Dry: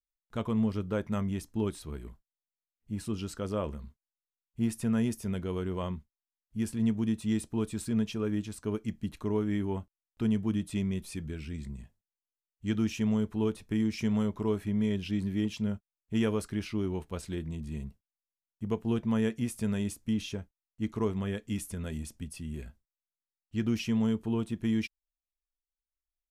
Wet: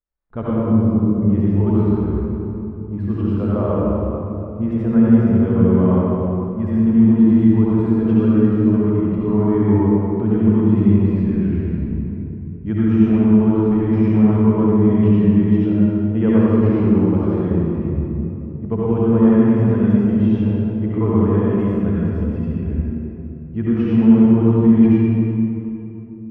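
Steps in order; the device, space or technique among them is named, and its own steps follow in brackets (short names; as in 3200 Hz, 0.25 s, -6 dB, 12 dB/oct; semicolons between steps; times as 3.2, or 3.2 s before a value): LPF 1300 Hz 12 dB/oct; 0.5–1.22 elliptic band-stop 380–4800 Hz; swimming-pool hall (reverb RT60 3.1 s, pre-delay 61 ms, DRR -8.5 dB; high shelf 3700 Hz -6.5 dB); gain +7 dB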